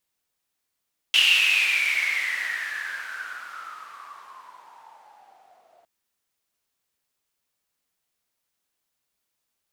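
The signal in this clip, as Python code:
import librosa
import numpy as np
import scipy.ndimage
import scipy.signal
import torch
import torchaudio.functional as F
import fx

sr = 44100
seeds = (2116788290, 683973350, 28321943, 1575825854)

y = fx.riser_noise(sr, seeds[0], length_s=4.71, colour='white', kind='bandpass', start_hz=2900.0, end_hz=660.0, q=12.0, swell_db=-35, law='exponential')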